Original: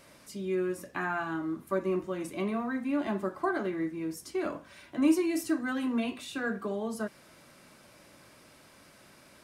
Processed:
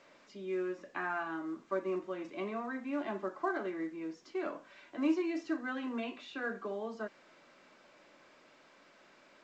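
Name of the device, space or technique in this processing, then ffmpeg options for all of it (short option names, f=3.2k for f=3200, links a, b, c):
telephone: -af "highpass=300,lowpass=3.5k,volume=-3.5dB" -ar 16000 -c:a pcm_alaw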